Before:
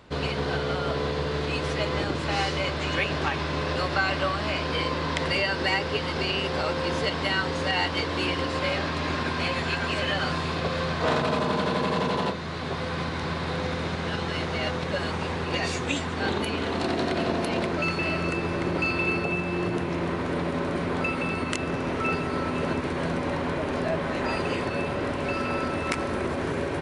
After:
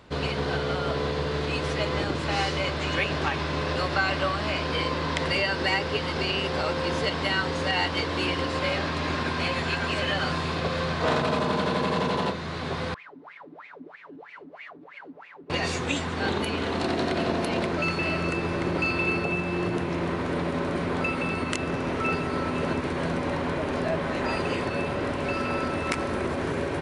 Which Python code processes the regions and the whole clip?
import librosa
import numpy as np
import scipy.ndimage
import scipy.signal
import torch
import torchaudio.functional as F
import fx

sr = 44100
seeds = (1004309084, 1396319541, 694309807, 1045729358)

y = fx.chain(x, sr, fx.lower_of_two(delay_ms=6.9),
    fx.wah_lfo(hz=3.1, low_hz=260.0, high_hz=2400.0, q=12.0), at=(12.94, 15.5))